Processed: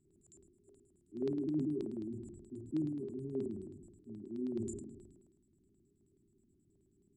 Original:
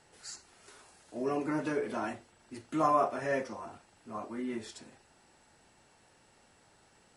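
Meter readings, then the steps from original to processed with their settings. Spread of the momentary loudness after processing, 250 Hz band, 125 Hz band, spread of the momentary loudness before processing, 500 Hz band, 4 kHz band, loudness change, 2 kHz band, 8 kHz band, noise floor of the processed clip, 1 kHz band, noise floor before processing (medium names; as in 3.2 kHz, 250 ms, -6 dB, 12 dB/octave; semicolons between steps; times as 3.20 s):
16 LU, -0.5 dB, +2.0 dB, 20 LU, -7.5 dB, under -15 dB, -6.0 dB, under -30 dB, -8.0 dB, -73 dBFS, under -35 dB, -65 dBFS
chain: Schroeder reverb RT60 0.39 s, combs from 31 ms, DRR 16 dB; FFT band-reject 410–7000 Hz; dynamic bell 120 Hz, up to +4 dB, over -59 dBFS, Q 2.7; LFO low-pass square 9.4 Hz 610–4200 Hz; decay stretcher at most 46 dB/s; trim -3 dB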